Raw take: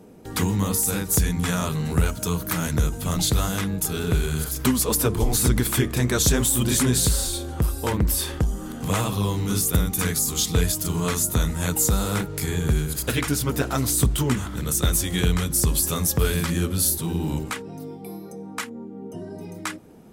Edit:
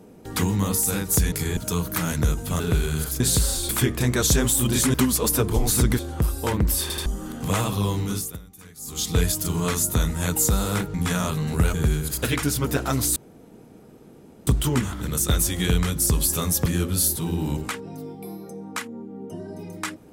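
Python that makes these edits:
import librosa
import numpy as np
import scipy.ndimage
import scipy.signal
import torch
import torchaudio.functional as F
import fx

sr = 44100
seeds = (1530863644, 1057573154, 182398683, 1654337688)

y = fx.edit(x, sr, fx.swap(start_s=1.32, length_s=0.8, other_s=12.34, other_length_s=0.25),
    fx.cut(start_s=3.15, length_s=0.85),
    fx.swap(start_s=4.6, length_s=1.05, other_s=6.9, other_length_s=0.49),
    fx.stutter_over(start_s=8.22, slice_s=0.08, count=3),
    fx.fade_down_up(start_s=9.39, length_s=1.18, db=-22.0, fade_s=0.4),
    fx.insert_room_tone(at_s=14.01, length_s=1.31),
    fx.cut(start_s=16.2, length_s=0.28), tone=tone)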